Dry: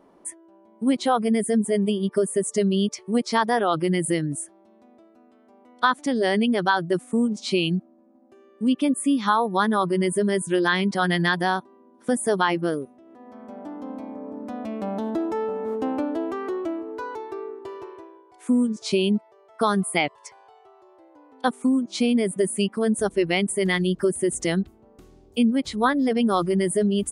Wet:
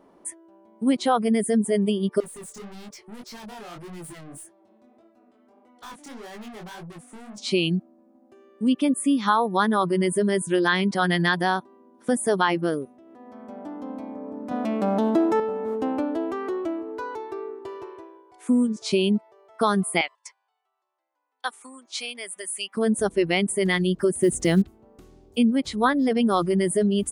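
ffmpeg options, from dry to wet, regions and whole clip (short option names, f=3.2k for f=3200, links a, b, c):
-filter_complex "[0:a]asettb=1/sr,asplit=3[a][b][c];[a]atrim=end=2.204[d];[b]atrim=start=2.2:end=7.38,asetpts=PTS-STARTPTS,afade=t=in:d=0.004:c=qsin,afade=t=out:st=5.176:d=0.004:c=qsin,aeval=exprs='(tanh(63.1*val(0)+0.05)-tanh(0.05))/63.1':c=same,flanger=delay=17:depth=6.8:speed=1.7[e];[c]atrim=start=7.376[f];[d][e]acrossfade=d=0.004:c1=hsin:c2=qsin[g];[g][f]acrossfade=d=0.004:c1=qsin:c2=hsin,asettb=1/sr,asplit=3[h][i][j];[h]atrim=end=14.514[k];[i]atrim=start=14.51:end=15.4,asetpts=PTS-STARTPTS,afade=t=in:d=0.004:c=qsin,afade=t=out:st=0.886:d=0.004:c=qsin,aeval=exprs='if(lt(val(0),0),0.708*val(0),val(0))':c=same,highpass=f=130:w=0.5412,highpass=f=130:w=1.3066,acontrast=77[l];[j]atrim=start=15.396[m];[k][l]acrossfade=d=0.004:c1=hsin:c2=qsin[n];[n][m]acrossfade=d=0.004:c1=qsin:c2=hsin,asettb=1/sr,asplit=3[o][p][q];[o]atrim=end=20.014[r];[p]atrim=start=20.01:end=22.75,asetpts=PTS-STARTPTS,afade=t=in:d=0.004:c=qsin,afade=t=out:st=2.736:d=0.004:c=qsin,agate=range=-17dB:threshold=-48dB:ratio=16:release=100:detection=peak,highpass=1.2k[s];[q]atrim=start=22.746[t];[r][s]acrossfade=d=0.004:c1=hsin:c2=qsin[u];[u][t]acrossfade=d=0.004:c1=qsin:c2=hsin,asettb=1/sr,asplit=3[v][w][x];[v]atrim=end=24.214[y];[w]atrim=start=24.21:end=24.62,asetpts=PTS-STARTPTS,afade=t=in:d=0.004:c=qsin,afade=t=out:st=0.406:d=0.004:c=qsin,acrusher=bits=8:mode=log:mix=0:aa=0.000001,lowshelf=f=350:g=6.5[z];[x]atrim=start=24.616[aa];[y][z]acrossfade=d=0.004:c1=hsin:c2=qsin[ab];[ab][aa]acrossfade=d=0.004:c1=qsin:c2=hsin"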